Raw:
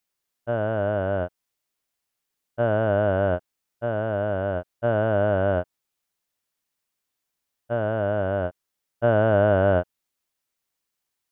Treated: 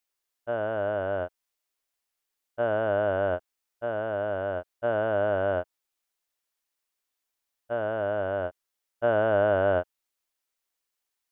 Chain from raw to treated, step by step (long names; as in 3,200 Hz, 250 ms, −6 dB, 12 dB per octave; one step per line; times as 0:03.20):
parametric band 140 Hz −14 dB 1.4 octaves
level −2 dB